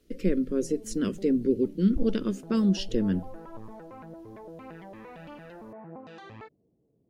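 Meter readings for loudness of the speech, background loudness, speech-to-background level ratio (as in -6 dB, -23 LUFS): -27.0 LUFS, -46.0 LUFS, 19.0 dB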